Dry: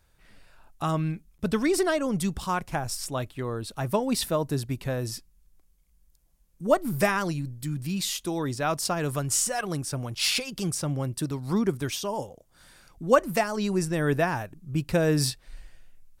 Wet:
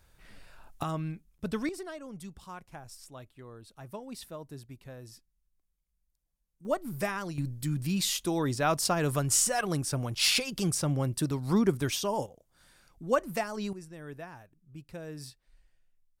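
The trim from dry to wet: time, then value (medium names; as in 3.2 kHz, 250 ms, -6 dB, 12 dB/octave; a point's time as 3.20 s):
+2 dB
from 0.83 s -7 dB
from 1.69 s -16.5 dB
from 6.65 s -8.5 dB
from 7.38 s 0 dB
from 12.26 s -7 dB
from 13.73 s -19 dB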